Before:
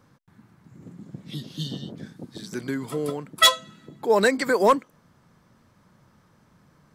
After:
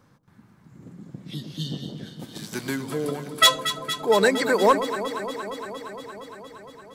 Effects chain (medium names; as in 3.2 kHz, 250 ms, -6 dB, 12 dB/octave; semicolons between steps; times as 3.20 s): 2.19–2.75 s: formants flattened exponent 0.6; echo whose repeats swap between lows and highs 116 ms, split 970 Hz, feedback 88%, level -10 dB